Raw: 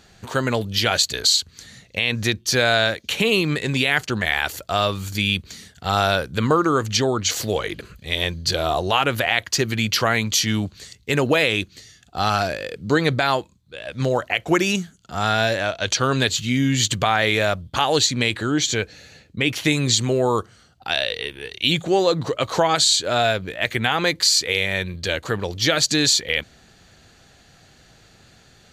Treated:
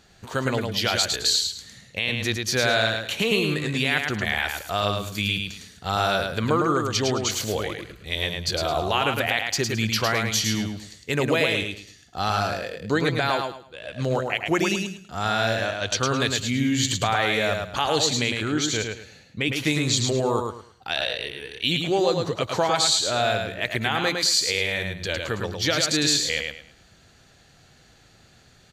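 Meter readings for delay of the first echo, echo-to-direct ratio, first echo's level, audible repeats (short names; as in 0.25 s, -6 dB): 0.107 s, -4.0 dB, -4.5 dB, 3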